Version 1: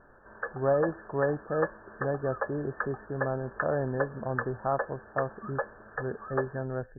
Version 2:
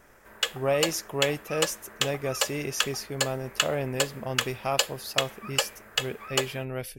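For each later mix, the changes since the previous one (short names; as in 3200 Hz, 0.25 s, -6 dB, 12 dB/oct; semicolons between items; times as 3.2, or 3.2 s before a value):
master: remove brick-wall FIR low-pass 1800 Hz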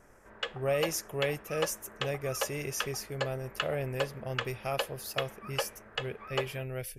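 speech: add ten-band EQ 250 Hz -9 dB, 1000 Hz -10 dB, 4000 Hz -7 dB; background: add tape spacing loss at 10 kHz 32 dB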